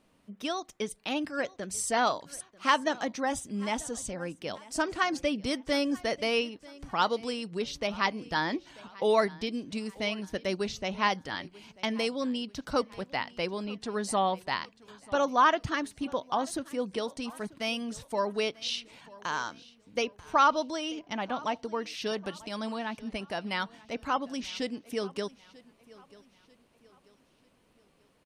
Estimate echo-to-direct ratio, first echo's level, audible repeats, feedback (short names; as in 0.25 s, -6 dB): -20.5 dB, -21.5 dB, 2, 41%